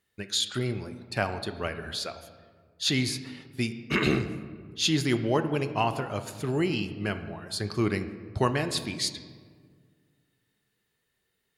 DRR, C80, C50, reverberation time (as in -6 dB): 9.0 dB, 12.5 dB, 11.0 dB, 1.8 s